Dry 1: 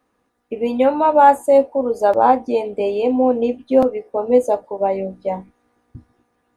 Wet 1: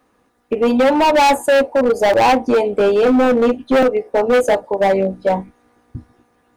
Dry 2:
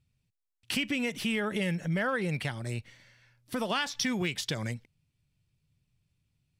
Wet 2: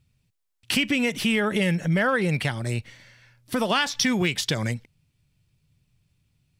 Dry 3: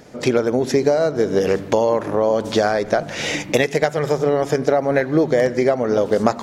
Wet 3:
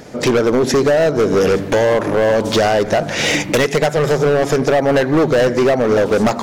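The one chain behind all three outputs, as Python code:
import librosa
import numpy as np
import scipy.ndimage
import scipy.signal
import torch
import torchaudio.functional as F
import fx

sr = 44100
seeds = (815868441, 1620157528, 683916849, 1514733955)

y = np.clip(x, -10.0 ** (-17.5 / 20.0), 10.0 ** (-17.5 / 20.0))
y = y * librosa.db_to_amplitude(7.5)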